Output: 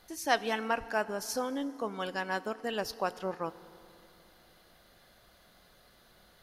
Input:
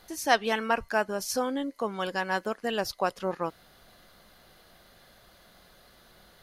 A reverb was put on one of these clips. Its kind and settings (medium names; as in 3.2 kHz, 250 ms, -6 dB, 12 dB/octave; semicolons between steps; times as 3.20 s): FDN reverb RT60 2.9 s, low-frequency decay 1.2×, high-frequency decay 0.7×, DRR 15.5 dB; trim -4.5 dB